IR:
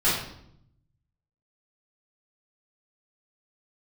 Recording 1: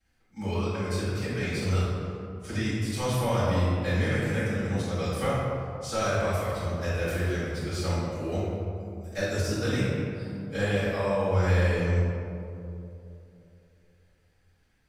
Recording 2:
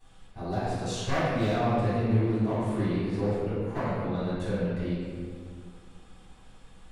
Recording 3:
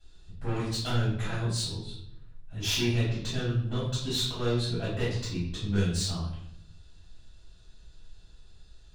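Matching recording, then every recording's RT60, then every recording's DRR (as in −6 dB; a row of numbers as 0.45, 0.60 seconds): 3; 2.9, 2.0, 0.70 seconds; −16.0, −15.5, −11.0 decibels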